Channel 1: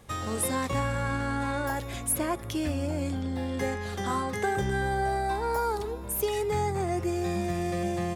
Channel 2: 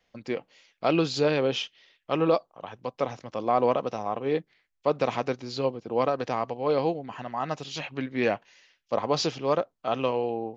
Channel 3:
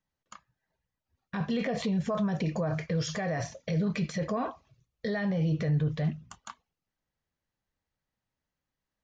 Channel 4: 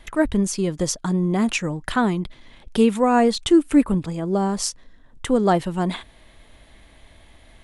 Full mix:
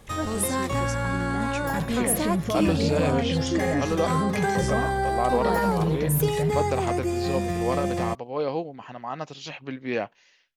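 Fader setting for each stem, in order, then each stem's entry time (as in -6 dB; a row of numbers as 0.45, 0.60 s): +2.5, -2.5, +2.0, -13.0 dB; 0.00, 1.70, 0.40, 0.00 s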